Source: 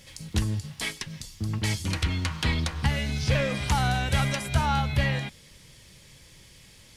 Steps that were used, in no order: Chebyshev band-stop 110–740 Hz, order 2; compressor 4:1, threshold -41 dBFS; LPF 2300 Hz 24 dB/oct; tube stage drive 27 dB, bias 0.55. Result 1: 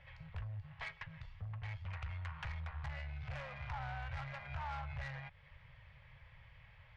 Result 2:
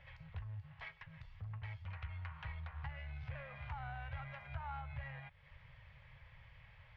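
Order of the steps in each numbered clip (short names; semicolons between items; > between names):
LPF > tube stage > compressor > Chebyshev band-stop; compressor > LPF > tube stage > Chebyshev band-stop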